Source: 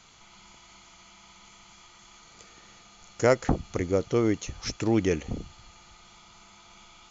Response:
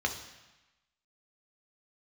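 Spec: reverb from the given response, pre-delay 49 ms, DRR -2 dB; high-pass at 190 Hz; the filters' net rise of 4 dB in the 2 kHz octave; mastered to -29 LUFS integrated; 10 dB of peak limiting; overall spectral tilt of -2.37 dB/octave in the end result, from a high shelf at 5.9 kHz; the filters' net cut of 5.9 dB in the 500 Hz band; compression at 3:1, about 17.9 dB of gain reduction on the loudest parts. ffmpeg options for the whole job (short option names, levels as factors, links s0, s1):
-filter_complex "[0:a]highpass=190,equalizer=f=500:t=o:g=-7.5,equalizer=f=2000:t=o:g=4.5,highshelf=f=5900:g=6.5,acompressor=threshold=0.00631:ratio=3,alimiter=level_in=3.16:limit=0.0631:level=0:latency=1,volume=0.316,asplit=2[s0][s1];[1:a]atrim=start_sample=2205,adelay=49[s2];[s1][s2]afir=irnorm=-1:irlink=0,volume=0.531[s3];[s0][s3]amix=inputs=2:normalize=0,volume=6.31"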